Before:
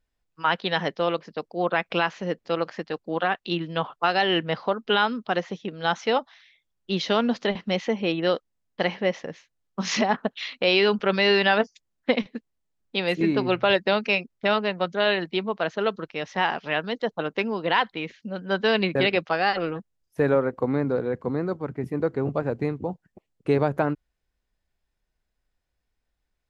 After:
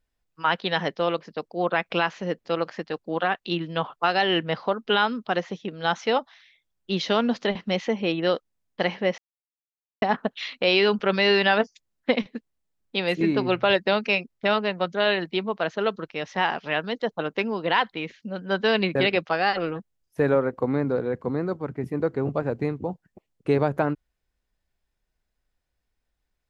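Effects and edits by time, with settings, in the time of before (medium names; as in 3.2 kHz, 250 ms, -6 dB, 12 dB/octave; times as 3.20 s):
9.18–10.02 s: mute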